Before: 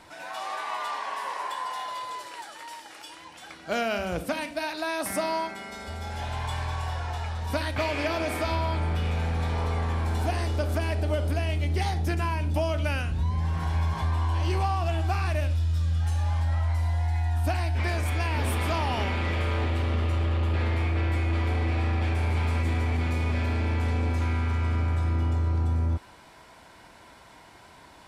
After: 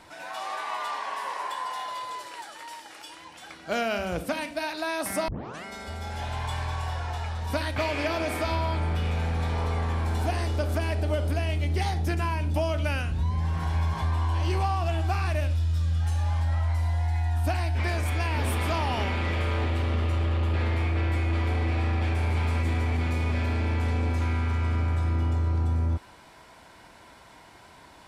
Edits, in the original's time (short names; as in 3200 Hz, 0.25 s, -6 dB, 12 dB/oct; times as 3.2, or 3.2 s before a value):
5.28 tape start 0.36 s